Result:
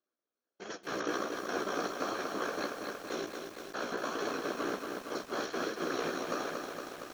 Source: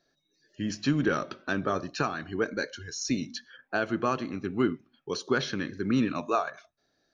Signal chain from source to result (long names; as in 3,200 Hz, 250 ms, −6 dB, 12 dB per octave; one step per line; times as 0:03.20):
compressor on every frequency bin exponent 0.2
noise gate −18 dBFS, range −53 dB
elliptic high-pass filter 340 Hz
brickwall limiter −15.5 dBFS, peak gain reduction 8.5 dB
ring modulation 30 Hz
random phases in short frames
flanger 1.4 Hz, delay 8.8 ms, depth 9.2 ms, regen +14%
on a send at −22.5 dB: convolution reverb RT60 1.3 s, pre-delay 93 ms
on the sum: feedback echo at a low word length 232 ms, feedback 80%, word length 8 bits, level −5 dB
level −4 dB